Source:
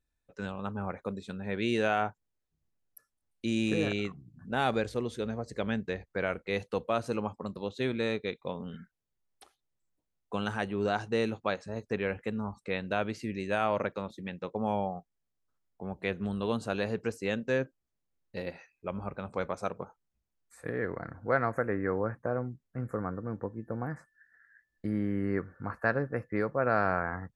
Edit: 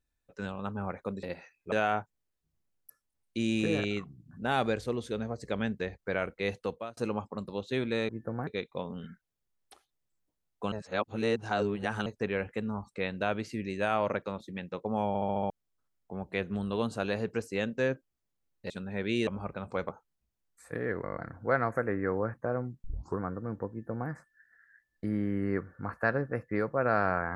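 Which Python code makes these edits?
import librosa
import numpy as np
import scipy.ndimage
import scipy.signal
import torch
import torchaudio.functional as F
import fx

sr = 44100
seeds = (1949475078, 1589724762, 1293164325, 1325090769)

y = fx.edit(x, sr, fx.swap(start_s=1.23, length_s=0.57, other_s=18.4, other_length_s=0.49),
    fx.fade_out_span(start_s=6.68, length_s=0.37),
    fx.reverse_span(start_s=10.42, length_s=1.34),
    fx.stutter_over(start_s=14.78, slice_s=0.07, count=6),
    fx.cut(start_s=19.51, length_s=0.31),
    fx.stutter(start_s=20.97, slice_s=0.02, count=7),
    fx.tape_start(start_s=22.65, length_s=0.35),
    fx.duplicate(start_s=23.52, length_s=0.38, to_s=8.17), tone=tone)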